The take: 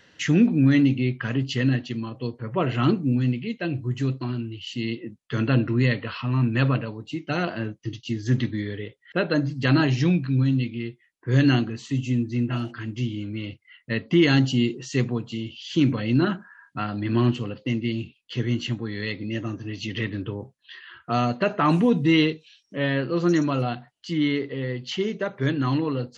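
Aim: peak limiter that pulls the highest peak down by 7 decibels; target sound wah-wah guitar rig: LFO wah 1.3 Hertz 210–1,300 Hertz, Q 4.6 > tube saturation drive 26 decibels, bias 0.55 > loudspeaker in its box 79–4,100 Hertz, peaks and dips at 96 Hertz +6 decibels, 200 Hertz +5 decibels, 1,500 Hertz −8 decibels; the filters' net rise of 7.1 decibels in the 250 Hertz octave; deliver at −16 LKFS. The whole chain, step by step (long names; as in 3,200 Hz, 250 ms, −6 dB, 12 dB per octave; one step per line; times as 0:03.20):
parametric band 250 Hz +7 dB
brickwall limiter −9.5 dBFS
LFO wah 1.3 Hz 210–1,300 Hz, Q 4.6
tube saturation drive 26 dB, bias 0.55
loudspeaker in its box 79–4,100 Hz, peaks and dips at 96 Hz +6 dB, 200 Hz +5 dB, 1,500 Hz −8 dB
level +19 dB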